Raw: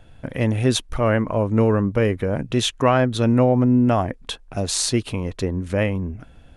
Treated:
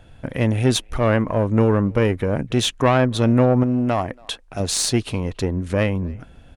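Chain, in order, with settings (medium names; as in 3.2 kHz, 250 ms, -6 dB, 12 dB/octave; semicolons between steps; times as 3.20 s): single-diode clipper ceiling -13 dBFS; 3.63–4.60 s: bass shelf 420 Hz -6 dB; speakerphone echo 280 ms, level -26 dB; trim +2 dB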